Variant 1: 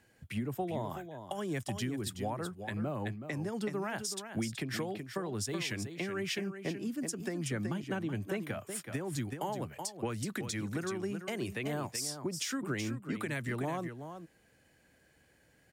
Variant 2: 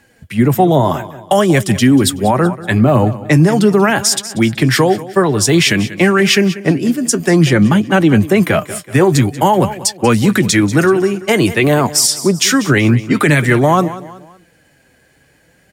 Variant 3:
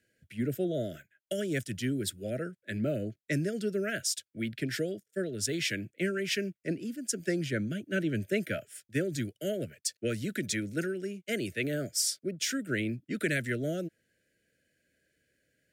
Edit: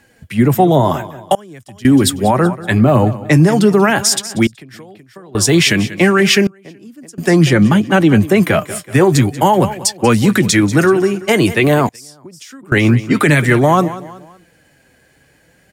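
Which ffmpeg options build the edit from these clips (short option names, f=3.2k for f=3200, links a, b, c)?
-filter_complex "[0:a]asplit=4[a][b][c][d];[1:a]asplit=5[e][f][g][h][i];[e]atrim=end=1.352[j];[a]atrim=start=1.348:end=1.852[k];[f]atrim=start=1.848:end=4.472[l];[b]atrim=start=4.468:end=5.352[m];[g]atrim=start=5.348:end=6.472[n];[c]atrim=start=6.468:end=7.182[o];[h]atrim=start=7.178:end=11.892[p];[d]atrim=start=11.888:end=12.722[q];[i]atrim=start=12.718[r];[j][k]acrossfade=d=0.004:c1=hsin:c2=hsin[s];[s][l]acrossfade=d=0.004:c1=hsin:c2=hsin[t];[t][m]acrossfade=d=0.004:c1=hsin:c2=hsin[u];[u][n]acrossfade=d=0.004:c1=hsin:c2=hsin[v];[v][o]acrossfade=d=0.004:c1=hsin:c2=hsin[w];[w][p]acrossfade=d=0.004:c1=hsin:c2=hsin[x];[x][q]acrossfade=d=0.004:c1=hsin:c2=hsin[y];[y][r]acrossfade=d=0.004:c1=hsin:c2=hsin"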